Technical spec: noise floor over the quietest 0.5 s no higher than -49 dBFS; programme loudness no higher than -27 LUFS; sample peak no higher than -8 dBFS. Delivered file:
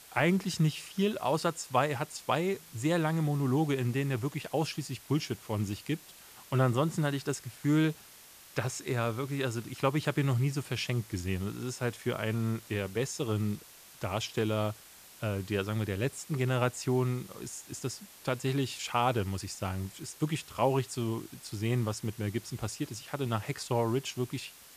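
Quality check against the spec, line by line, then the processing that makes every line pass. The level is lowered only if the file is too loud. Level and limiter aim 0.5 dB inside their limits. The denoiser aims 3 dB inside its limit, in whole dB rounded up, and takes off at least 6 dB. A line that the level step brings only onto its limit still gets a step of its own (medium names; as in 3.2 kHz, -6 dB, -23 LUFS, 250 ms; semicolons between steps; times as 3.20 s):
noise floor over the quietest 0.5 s -54 dBFS: pass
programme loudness -32.5 LUFS: pass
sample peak -13.0 dBFS: pass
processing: none needed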